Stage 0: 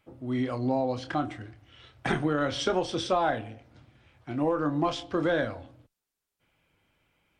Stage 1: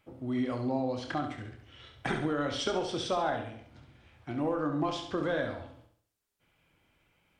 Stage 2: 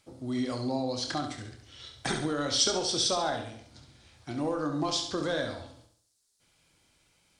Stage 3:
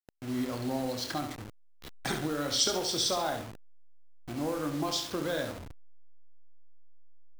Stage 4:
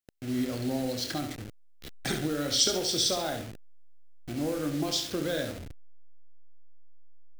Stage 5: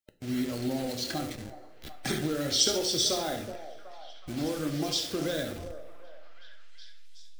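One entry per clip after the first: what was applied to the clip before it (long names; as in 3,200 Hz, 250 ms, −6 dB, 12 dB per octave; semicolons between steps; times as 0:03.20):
downward compressor 1.5 to 1, threshold −36 dBFS, peak gain reduction 5.5 dB; flutter between parallel walls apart 11.7 metres, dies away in 0.56 s
flat-topped bell 6,300 Hz +15.5 dB
hold until the input has moved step −36 dBFS; level −1.5 dB
parametric band 1,000 Hz −11 dB 0.78 octaves; level +3 dB
spectral magnitudes quantised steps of 15 dB; echo through a band-pass that steps 372 ms, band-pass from 540 Hz, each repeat 0.7 octaves, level −9.5 dB; coupled-rooms reverb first 0.46 s, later 2.2 s, from −18 dB, DRR 10 dB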